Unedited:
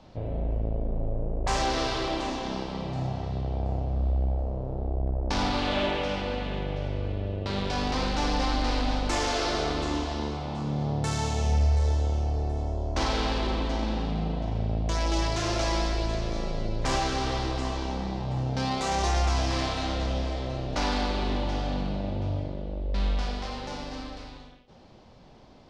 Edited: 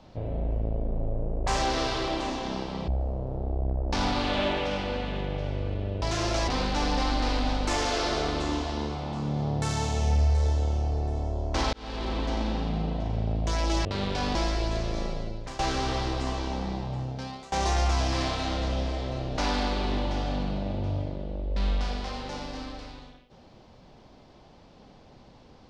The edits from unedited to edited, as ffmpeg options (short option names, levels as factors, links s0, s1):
-filter_complex "[0:a]asplit=9[s0][s1][s2][s3][s4][s5][s6][s7][s8];[s0]atrim=end=2.882[s9];[s1]atrim=start=4.258:end=7.402[s10];[s2]atrim=start=15.268:end=15.732[s11];[s3]atrim=start=7.898:end=13.15,asetpts=PTS-STARTPTS,afade=t=out:st=5.248:d=0.004:c=hsin[s12];[s4]atrim=start=13.15:end=15.272,asetpts=PTS-STARTPTS,afade=t=in:d=0.68:c=qsin[s13];[s5]atrim=start=7.398:end=7.902[s14];[s6]atrim=start=15.728:end=16.97,asetpts=PTS-STARTPTS,afade=t=out:st=0.692:d=0.55:silence=0.125893[s15];[s7]atrim=start=16.97:end=18.9,asetpts=PTS-STARTPTS,afade=t=in:d=0.004:c=hsin:silence=0.125893,afade=t=out:st=1.14:d=0.79:silence=0.0707946[s16];[s8]atrim=start=18.9,asetpts=PTS-STARTPTS,afade=t=in:d=0.004:c=hsin:silence=0.0707946[s17];[s9][s10]acrossfade=d=0.004:c1=hsin:c2=hsin[s18];[s18][s11]acrossfade=d=0.004:c1=hsin:c2=hsin[s19];[s12][s13]concat=n=2:v=0:a=1[s20];[s19][s20]acrossfade=d=0.004:c1=hsin:c2=hsin[s21];[s21][s14]acrossfade=d=0.004:c1=hsin:c2=hsin[s22];[s15][s16][s17]concat=n=3:v=0:a=1[s23];[s22][s23]acrossfade=d=0.004:c1=hsin:c2=hsin"